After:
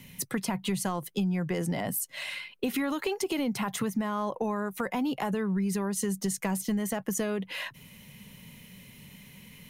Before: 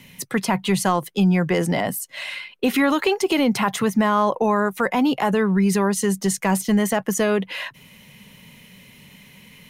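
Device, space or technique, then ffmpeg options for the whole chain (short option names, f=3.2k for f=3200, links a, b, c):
ASMR close-microphone chain: -af "lowshelf=f=240:g=7.5,acompressor=threshold=-21dB:ratio=4,highshelf=f=7.1k:g=7.5,volume=-6.5dB"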